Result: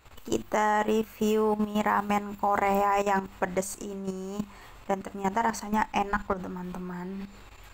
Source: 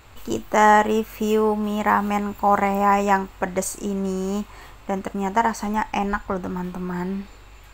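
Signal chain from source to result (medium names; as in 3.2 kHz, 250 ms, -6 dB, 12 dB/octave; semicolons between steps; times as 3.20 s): hum notches 50/100/150/200/250/300/350 Hz; level held to a coarse grid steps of 12 dB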